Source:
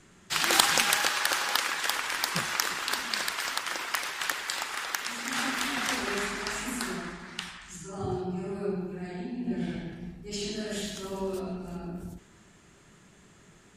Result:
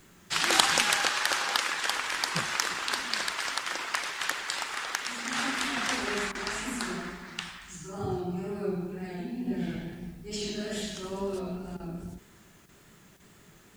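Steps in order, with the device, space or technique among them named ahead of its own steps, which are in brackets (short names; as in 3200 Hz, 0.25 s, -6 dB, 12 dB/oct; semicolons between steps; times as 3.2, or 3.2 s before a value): worn cassette (LPF 9600 Hz 12 dB/oct; wow and flutter; level dips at 6.32/11.77/12.66/13.17, 28 ms -10 dB; white noise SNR 33 dB)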